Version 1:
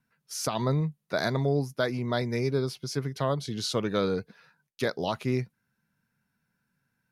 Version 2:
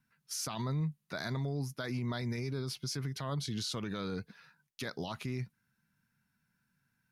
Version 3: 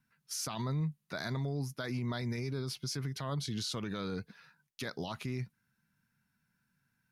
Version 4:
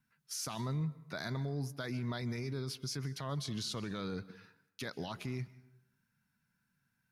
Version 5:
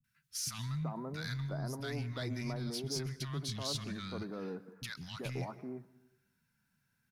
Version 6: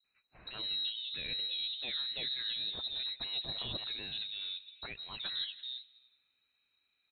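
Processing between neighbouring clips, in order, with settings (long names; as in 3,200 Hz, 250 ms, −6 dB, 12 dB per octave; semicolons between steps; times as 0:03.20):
parametric band 510 Hz −8.5 dB 1.3 octaves; brickwall limiter −28 dBFS, peak gain reduction 11 dB
no processing that can be heard
convolution reverb RT60 0.85 s, pre-delay 123 ms, DRR 18 dB; level −2 dB
soft clipping −31.5 dBFS, distortion −20 dB; three-band delay without the direct sound lows, highs, mids 40/380 ms, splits 190/1,200 Hz; level +3 dB
voice inversion scrambler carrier 4,000 Hz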